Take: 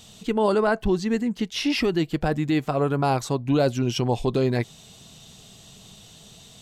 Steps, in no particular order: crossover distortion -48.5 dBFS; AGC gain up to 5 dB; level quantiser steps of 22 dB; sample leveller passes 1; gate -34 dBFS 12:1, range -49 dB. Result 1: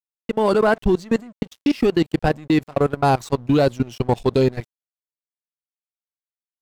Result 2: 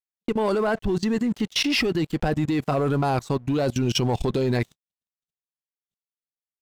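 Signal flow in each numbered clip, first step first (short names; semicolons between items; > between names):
level quantiser > AGC > gate > sample leveller > crossover distortion; sample leveller > crossover distortion > AGC > level quantiser > gate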